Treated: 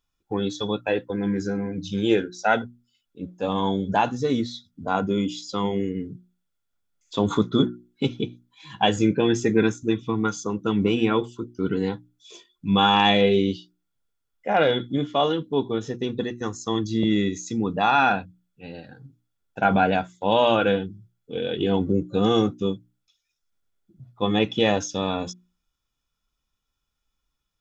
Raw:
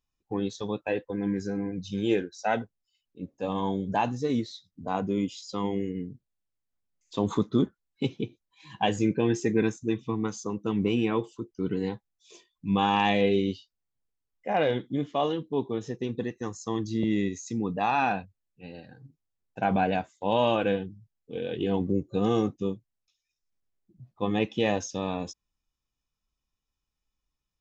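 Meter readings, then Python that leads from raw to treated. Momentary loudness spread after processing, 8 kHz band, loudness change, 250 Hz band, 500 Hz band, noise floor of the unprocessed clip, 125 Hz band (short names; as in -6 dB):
13 LU, n/a, +5.0 dB, +4.5 dB, +5.0 dB, -85 dBFS, +4.0 dB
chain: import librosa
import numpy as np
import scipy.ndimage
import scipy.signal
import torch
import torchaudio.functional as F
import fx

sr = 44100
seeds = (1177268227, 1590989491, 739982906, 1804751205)

y = fx.hum_notches(x, sr, base_hz=60, count=6)
y = fx.small_body(y, sr, hz=(1400.0, 3400.0), ring_ms=45, db=14)
y = F.gain(torch.from_numpy(y), 5.0).numpy()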